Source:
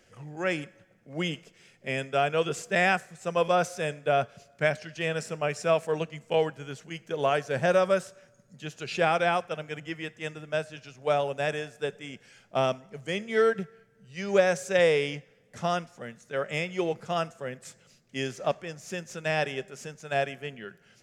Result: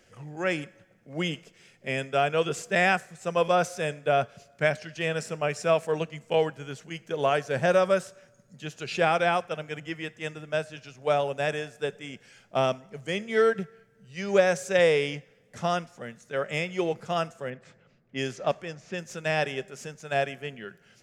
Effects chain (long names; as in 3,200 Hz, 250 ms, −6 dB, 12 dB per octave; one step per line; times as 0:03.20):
0:17.50–0:18.99: low-pass that shuts in the quiet parts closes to 1,600 Hz, open at −27 dBFS
level +1 dB